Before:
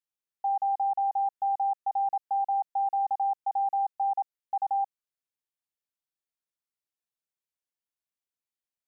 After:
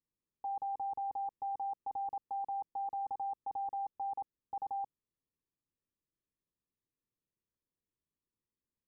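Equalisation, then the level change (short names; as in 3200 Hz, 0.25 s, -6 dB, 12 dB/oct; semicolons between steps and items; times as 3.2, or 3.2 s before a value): running mean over 60 samples; +12.5 dB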